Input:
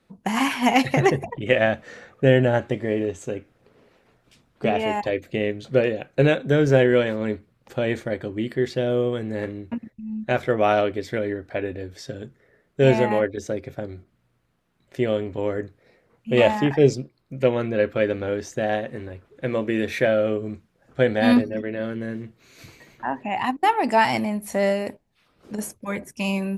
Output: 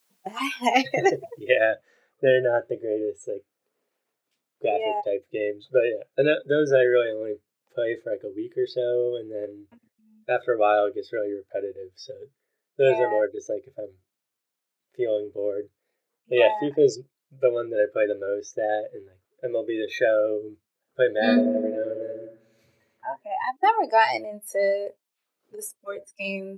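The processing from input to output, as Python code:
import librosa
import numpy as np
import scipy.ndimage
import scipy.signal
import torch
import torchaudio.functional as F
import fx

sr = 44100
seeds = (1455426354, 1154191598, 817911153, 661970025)

y = fx.noise_floor_step(x, sr, seeds[0], at_s=1.68, before_db=-50, after_db=-65, tilt_db=0.0)
y = fx.echo_wet_lowpass(y, sr, ms=90, feedback_pct=73, hz=1400.0, wet_db=-5.0, at=(21.09, 23.16))
y = scipy.signal.sosfilt(scipy.signal.butter(2, 320.0, 'highpass', fs=sr, output='sos'), y)
y = fx.noise_reduce_blind(y, sr, reduce_db=20)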